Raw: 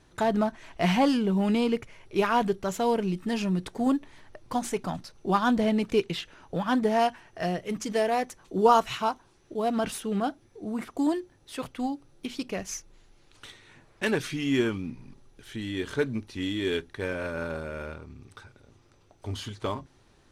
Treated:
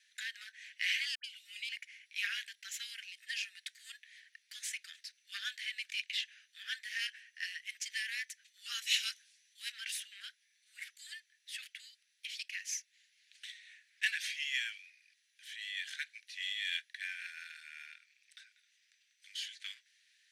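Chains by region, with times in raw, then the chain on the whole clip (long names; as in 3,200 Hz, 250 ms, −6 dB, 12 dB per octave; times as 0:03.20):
0:01.15–0:01.69: parametric band 1,700 Hz −12.5 dB 0.21 octaves + phaser with its sweep stopped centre 410 Hz, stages 4 + all-pass dispersion highs, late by 92 ms, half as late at 1,100 Hz
0:08.82–0:09.72: parametric band 9,400 Hz +11 dB 2.9 octaves + multiband upward and downward expander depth 40%
whole clip: Butterworth high-pass 1,700 Hz 72 dB per octave; high-shelf EQ 6,700 Hz −7 dB; level +1 dB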